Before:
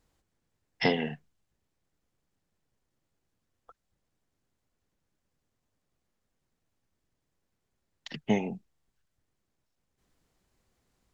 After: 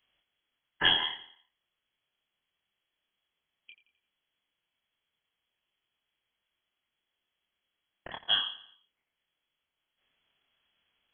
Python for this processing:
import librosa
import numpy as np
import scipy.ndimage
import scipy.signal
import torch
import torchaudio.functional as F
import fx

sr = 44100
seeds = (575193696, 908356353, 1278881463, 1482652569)

y = fx.brickwall_highpass(x, sr, low_hz=300.0)
y = fx.doubler(y, sr, ms=26.0, db=-4.0)
y = fx.echo_feedback(y, sr, ms=86, feedback_pct=46, wet_db=-15)
y = fx.freq_invert(y, sr, carrier_hz=3700)
y = y * librosa.db_to_amplitude(1.5)